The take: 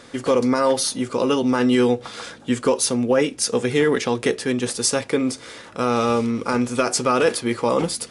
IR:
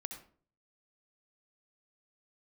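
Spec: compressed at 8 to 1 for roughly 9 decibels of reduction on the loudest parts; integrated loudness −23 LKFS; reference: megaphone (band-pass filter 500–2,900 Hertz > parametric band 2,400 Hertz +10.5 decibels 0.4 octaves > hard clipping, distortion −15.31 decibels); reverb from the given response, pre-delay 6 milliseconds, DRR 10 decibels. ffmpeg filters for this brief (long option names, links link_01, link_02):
-filter_complex "[0:a]acompressor=threshold=-23dB:ratio=8,asplit=2[link_01][link_02];[1:a]atrim=start_sample=2205,adelay=6[link_03];[link_02][link_03]afir=irnorm=-1:irlink=0,volume=-8dB[link_04];[link_01][link_04]amix=inputs=2:normalize=0,highpass=500,lowpass=2900,equalizer=frequency=2400:width_type=o:width=0.4:gain=10.5,asoftclip=type=hard:threshold=-23dB,volume=8.5dB"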